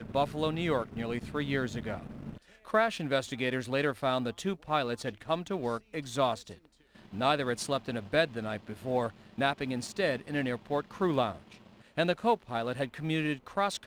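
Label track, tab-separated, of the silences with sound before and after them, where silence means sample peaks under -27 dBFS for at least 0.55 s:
1.940000	2.740000	silence
6.340000	7.210000	silence
11.300000	11.980000	silence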